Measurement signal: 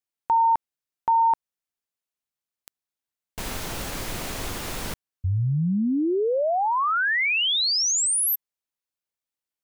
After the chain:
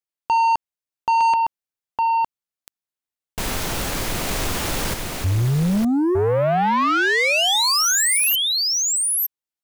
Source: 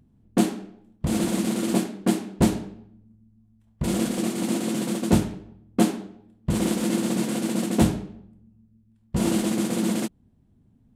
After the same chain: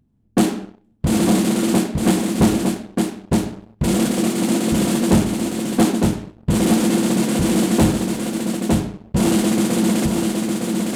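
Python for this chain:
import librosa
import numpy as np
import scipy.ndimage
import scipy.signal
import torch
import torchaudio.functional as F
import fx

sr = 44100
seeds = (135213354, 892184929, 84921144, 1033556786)

y = x + 10.0 ** (-4.5 / 20.0) * np.pad(x, (int(909 * sr / 1000.0), 0))[:len(x)]
y = fx.leveller(y, sr, passes=2)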